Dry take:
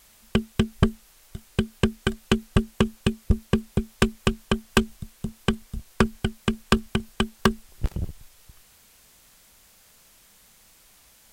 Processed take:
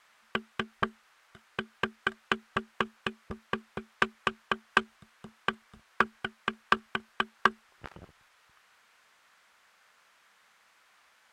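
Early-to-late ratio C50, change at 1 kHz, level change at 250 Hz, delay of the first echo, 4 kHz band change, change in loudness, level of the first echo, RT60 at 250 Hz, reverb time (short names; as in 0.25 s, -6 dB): none, +0.5 dB, -16.0 dB, none, -6.5 dB, -6.5 dB, none, none, none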